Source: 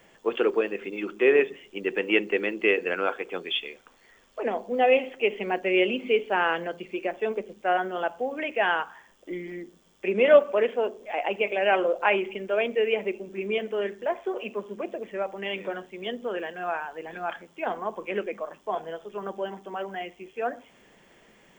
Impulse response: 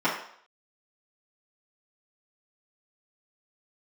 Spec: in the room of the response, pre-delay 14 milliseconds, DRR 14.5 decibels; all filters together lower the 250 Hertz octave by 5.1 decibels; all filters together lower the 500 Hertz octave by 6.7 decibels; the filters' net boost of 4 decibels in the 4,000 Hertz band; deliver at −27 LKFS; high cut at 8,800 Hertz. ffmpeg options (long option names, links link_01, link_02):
-filter_complex "[0:a]lowpass=8800,equalizer=frequency=250:width_type=o:gain=-3.5,equalizer=frequency=500:width_type=o:gain=-7.5,equalizer=frequency=4000:width_type=o:gain=6.5,asplit=2[link_01][link_02];[1:a]atrim=start_sample=2205,adelay=14[link_03];[link_02][link_03]afir=irnorm=-1:irlink=0,volume=-29dB[link_04];[link_01][link_04]amix=inputs=2:normalize=0,volume=2dB"